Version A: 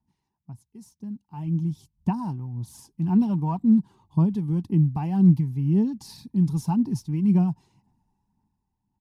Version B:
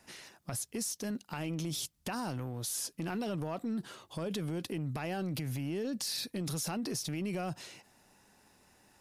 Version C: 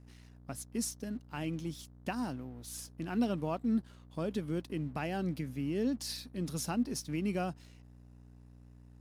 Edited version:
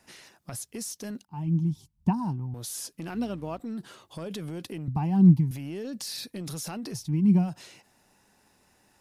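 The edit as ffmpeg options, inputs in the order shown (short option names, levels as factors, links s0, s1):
-filter_complex "[0:a]asplit=3[s0][s1][s2];[1:a]asplit=5[s3][s4][s5][s6][s7];[s3]atrim=end=1.252[s8];[s0]atrim=start=1.248:end=2.542[s9];[s4]atrim=start=2.538:end=3.142[s10];[2:a]atrim=start=3.138:end=3.602[s11];[s5]atrim=start=3.598:end=4.882[s12];[s1]atrim=start=4.878:end=5.512[s13];[s6]atrim=start=5.508:end=7.12[s14];[s2]atrim=start=6.88:end=7.56[s15];[s7]atrim=start=7.32[s16];[s8][s9]acrossfade=d=0.004:c1=hsin:c2=hsin[s17];[s17][s10]acrossfade=d=0.004:c1=hsin:c2=hsin[s18];[s18][s11]acrossfade=d=0.004:c1=hsin:c2=hsin[s19];[s19][s12]acrossfade=d=0.004:c1=hsin:c2=hsin[s20];[s20][s13]acrossfade=d=0.004:c1=hsin:c2=hsin[s21];[s21][s14]acrossfade=d=0.004:c1=hsin:c2=hsin[s22];[s22][s15]acrossfade=d=0.24:c1=tri:c2=tri[s23];[s23][s16]acrossfade=d=0.24:c1=tri:c2=tri"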